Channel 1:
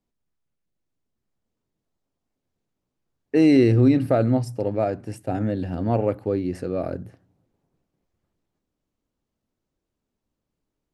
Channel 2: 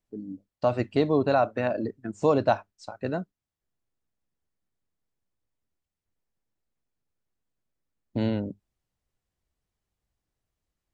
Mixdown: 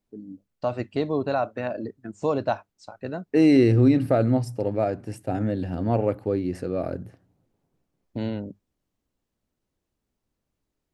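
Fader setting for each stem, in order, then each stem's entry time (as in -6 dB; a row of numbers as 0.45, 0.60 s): -1.0, -2.5 dB; 0.00, 0.00 s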